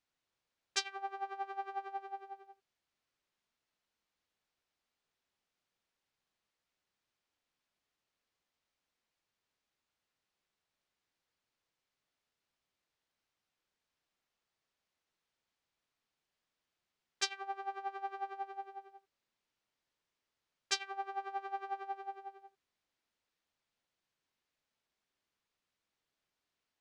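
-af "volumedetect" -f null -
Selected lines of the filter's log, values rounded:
mean_volume: -48.8 dB
max_volume: -13.4 dB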